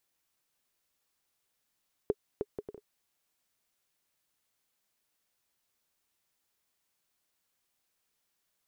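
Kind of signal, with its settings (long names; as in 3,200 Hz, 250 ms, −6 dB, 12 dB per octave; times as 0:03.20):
bouncing ball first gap 0.31 s, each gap 0.57, 416 Hz, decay 44 ms −16 dBFS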